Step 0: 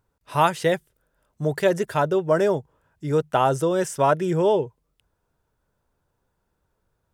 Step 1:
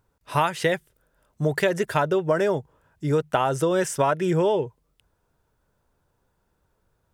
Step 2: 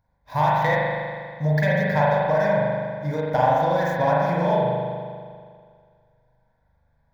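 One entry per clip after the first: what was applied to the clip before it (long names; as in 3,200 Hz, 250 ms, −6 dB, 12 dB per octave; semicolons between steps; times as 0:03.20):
dynamic equaliser 2,100 Hz, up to +5 dB, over −36 dBFS, Q 0.95; downward compressor 6 to 1, threshold −21 dBFS, peak gain reduction 10 dB; level +3 dB
running median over 9 samples; phaser with its sweep stopped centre 1,900 Hz, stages 8; spring reverb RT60 2 s, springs 40 ms, chirp 65 ms, DRR −5.5 dB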